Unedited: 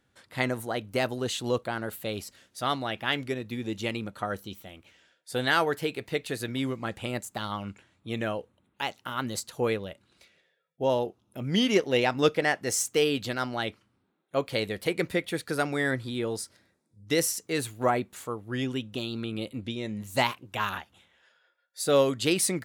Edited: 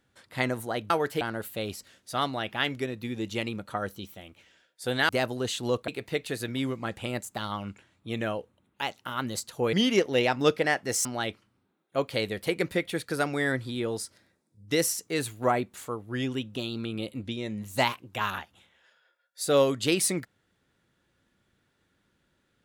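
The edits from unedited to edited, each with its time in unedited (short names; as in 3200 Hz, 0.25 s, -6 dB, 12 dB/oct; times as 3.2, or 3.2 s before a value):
0.9–1.69 swap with 5.57–5.88
9.73–11.51 cut
12.83–13.44 cut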